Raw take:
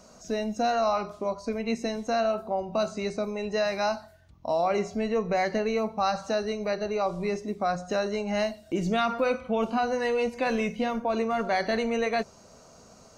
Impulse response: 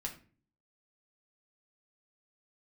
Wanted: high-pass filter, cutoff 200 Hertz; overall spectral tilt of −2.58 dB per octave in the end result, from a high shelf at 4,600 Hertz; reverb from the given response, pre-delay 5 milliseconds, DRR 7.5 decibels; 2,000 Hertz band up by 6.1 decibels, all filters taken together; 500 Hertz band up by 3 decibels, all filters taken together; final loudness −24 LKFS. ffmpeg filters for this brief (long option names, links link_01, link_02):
-filter_complex "[0:a]highpass=200,equalizer=frequency=500:width_type=o:gain=3.5,equalizer=frequency=2000:width_type=o:gain=6.5,highshelf=frequency=4600:gain=5.5,asplit=2[link_01][link_02];[1:a]atrim=start_sample=2205,adelay=5[link_03];[link_02][link_03]afir=irnorm=-1:irlink=0,volume=-7dB[link_04];[link_01][link_04]amix=inputs=2:normalize=0,volume=0.5dB"